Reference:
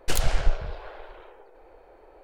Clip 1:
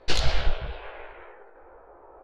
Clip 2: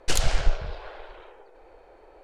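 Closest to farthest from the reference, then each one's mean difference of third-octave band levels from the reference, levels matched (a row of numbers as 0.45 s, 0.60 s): 2, 1; 1.5 dB, 4.0 dB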